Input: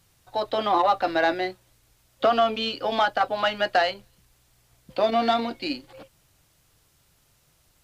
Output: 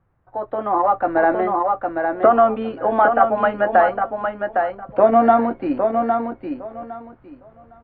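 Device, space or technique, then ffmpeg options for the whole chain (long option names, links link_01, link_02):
action camera in a waterproof case: -af "lowpass=frequency=1500:width=0.5412,lowpass=frequency=1500:width=1.3066,aecho=1:1:809|1618|2427:0.501|0.0902|0.0162,dynaudnorm=framelen=230:gausssize=9:maxgain=10.5dB" -ar 44100 -c:a aac -b:a 48k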